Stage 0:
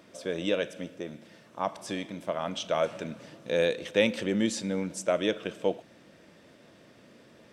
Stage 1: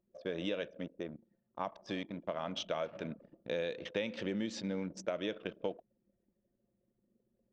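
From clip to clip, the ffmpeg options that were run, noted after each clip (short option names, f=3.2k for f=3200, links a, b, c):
-af "lowpass=f=5.7k:w=0.5412,lowpass=f=5.7k:w=1.3066,anlmdn=0.251,acompressor=threshold=-29dB:ratio=6,volume=-3.5dB"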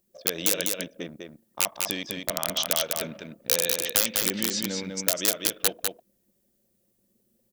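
-af "aeval=exprs='(mod(20*val(0)+1,2)-1)/20':c=same,crystalizer=i=5.5:c=0,aecho=1:1:200:0.631,volume=3dB"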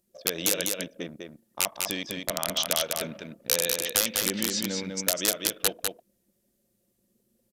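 -af "aresample=32000,aresample=44100"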